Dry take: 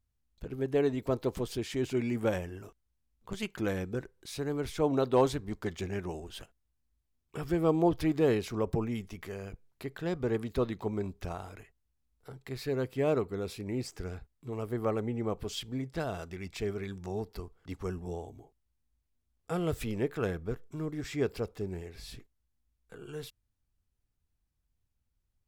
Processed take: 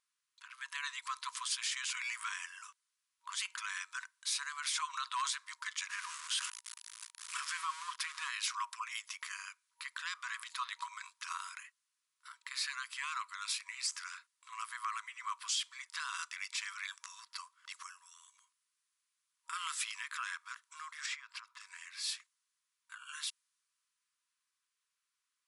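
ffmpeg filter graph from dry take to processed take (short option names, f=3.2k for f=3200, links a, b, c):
-filter_complex "[0:a]asettb=1/sr,asplit=3[a][b][c];[a]atrim=end=5.884[d];[b]atrim=start=5.88:end=8.3,asetpts=PTS-STARTPTS,afade=t=in:d=0.004:c=qsin,afade=t=out:st=2.416:d=0.004:c=qsin,aeval=exprs='val(0)+0.5*0.01*sgn(val(0))':c=same,adynamicequalizer=threshold=0.00631:dfrequency=1500:dqfactor=0.7:tfrequency=1500:tqfactor=0.7:attack=5:release=100:ratio=0.375:range=4:mode=cutabove:tftype=highshelf[e];[c]atrim=start=8.296[f];[d][e]acrossfade=d=0.004:c1=hsin:c2=qsin[g];[g][f]acrossfade=d=0.004:c1=qsin:c2=hsin,asettb=1/sr,asplit=3[h][i][j];[h]atrim=end=17.724[k];[i]atrim=start=17.72:end=19.53,asetpts=PTS-STARTPTS,afade=t=in:d=0.004:c=qsin,afade=t=out:st=1.806:d=0.004:c=qsin,highshelf=f=7.8k:g=7,acompressor=threshold=-43dB:ratio=3:attack=3.2:release=140:knee=1:detection=peak[l];[j]atrim=start=19.526[m];[k][l]acrossfade=d=0.004:c1=hsin:c2=qsin[n];[n][m]acrossfade=d=0.004:c1=qsin:c2=hsin,asettb=1/sr,asplit=3[o][p][q];[o]atrim=end=21.064[r];[p]atrim=start=21.06:end=21.6,asetpts=PTS-STARTPTS,afade=t=in:d=0.004:c=qsin,afade=t=out:st=0.536:d=0.004:c=qsin,lowpass=f=2.1k:p=1,equalizer=f=79:w=0.84:g=-6.5,acompressor=threshold=-39dB:ratio=10:attack=3.2:release=140:knee=1:detection=peak[s];[q]atrim=start=21.596[t];[r][s]acrossfade=d=0.004:c1=hsin:c2=qsin[u];[u][t]acrossfade=d=0.004:c1=qsin:c2=hsin,afftfilt=real='re*between(b*sr/4096,950,11000)':imag='im*between(b*sr/4096,950,11000)':win_size=4096:overlap=0.75,alimiter=level_in=11.5dB:limit=-24dB:level=0:latency=1:release=42,volume=-11.5dB,adynamicequalizer=threshold=0.001:dfrequency=4000:dqfactor=0.7:tfrequency=4000:tqfactor=0.7:attack=5:release=100:ratio=0.375:range=3:mode=boostabove:tftype=highshelf,volume=7dB"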